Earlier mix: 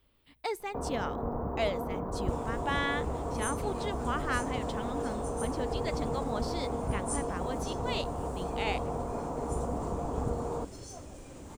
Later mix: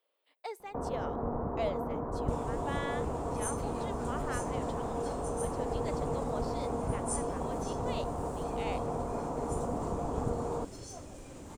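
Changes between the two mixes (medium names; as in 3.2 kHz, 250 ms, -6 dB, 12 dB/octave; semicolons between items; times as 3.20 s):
speech: add ladder high-pass 460 Hz, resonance 50%; master: add peaking EQ 64 Hz -8 dB 0.22 oct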